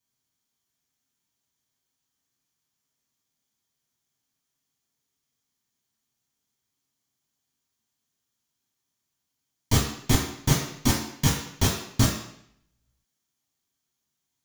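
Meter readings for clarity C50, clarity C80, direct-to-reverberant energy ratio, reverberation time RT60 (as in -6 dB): 4.5 dB, 7.5 dB, -3.0 dB, 0.70 s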